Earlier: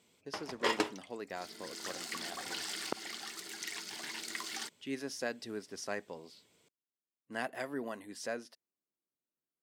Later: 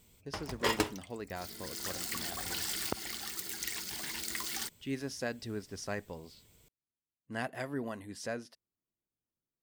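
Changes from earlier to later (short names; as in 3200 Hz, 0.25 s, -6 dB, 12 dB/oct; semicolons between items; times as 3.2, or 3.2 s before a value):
background: remove air absorption 53 m; master: remove HPF 250 Hz 12 dB/oct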